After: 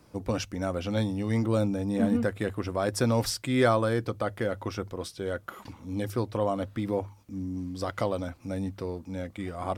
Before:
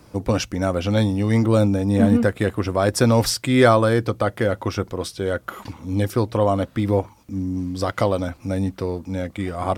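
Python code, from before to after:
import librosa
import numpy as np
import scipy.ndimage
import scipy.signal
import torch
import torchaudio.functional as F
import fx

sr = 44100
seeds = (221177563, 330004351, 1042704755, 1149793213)

y = fx.hum_notches(x, sr, base_hz=50, count=2)
y = F.gain(torch.from_numpy(y), -8.5).numpy()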